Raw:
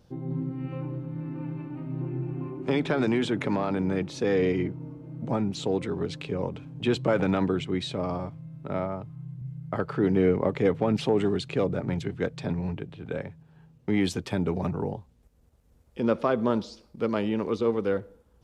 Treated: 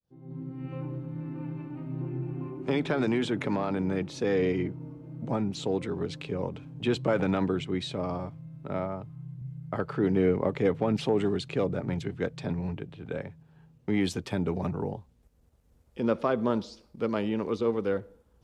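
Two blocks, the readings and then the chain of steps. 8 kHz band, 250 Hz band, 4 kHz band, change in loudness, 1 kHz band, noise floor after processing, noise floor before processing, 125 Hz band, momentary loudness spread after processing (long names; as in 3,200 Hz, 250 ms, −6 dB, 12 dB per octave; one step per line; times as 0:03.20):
−2.0 dB, −2.0 dB, −2.0 dB, −2.0 dB, −2.0 dB, −63 dBFS, −61 dBFS, −2.0 dB, 13 LU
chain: fade in at the beginning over 0.79 s
level −2 dB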